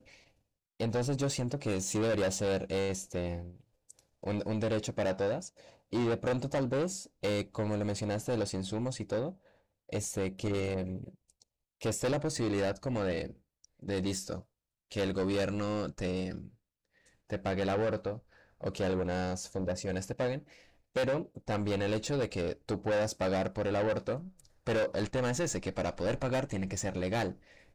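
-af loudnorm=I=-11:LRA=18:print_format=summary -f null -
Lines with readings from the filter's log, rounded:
Input Integrated:    -33.7 LUFS
Input True Peak:     -26.1 dBTP
Input LRA:             2.7 LU
Input Threshold:     -44.2 LUFS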